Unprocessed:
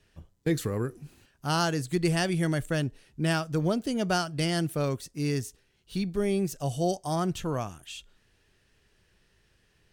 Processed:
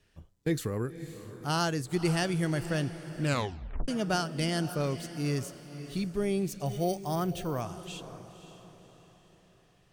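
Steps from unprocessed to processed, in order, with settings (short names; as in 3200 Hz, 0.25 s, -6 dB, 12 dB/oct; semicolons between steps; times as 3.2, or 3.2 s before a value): diffused feedback echo 0.541 s, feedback 43%, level -12.5 dB; 3.22 tape stop 0.66 s; 6.66–7.61 careless resampling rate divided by 3×, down filtered, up hold; gain -2.5 dB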